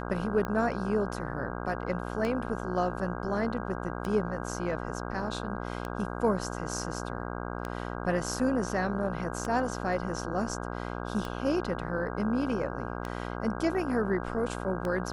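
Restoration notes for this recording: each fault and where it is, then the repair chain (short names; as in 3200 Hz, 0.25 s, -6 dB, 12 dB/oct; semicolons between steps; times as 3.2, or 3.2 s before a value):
buzz 60 Hz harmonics 27 -36 dBFS
tick 33 1/3 rpm -20 dBFS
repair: de-click; de-hum 60 Hz, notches 27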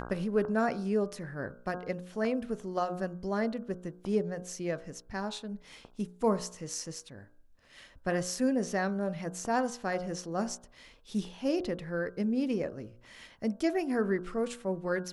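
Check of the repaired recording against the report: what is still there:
none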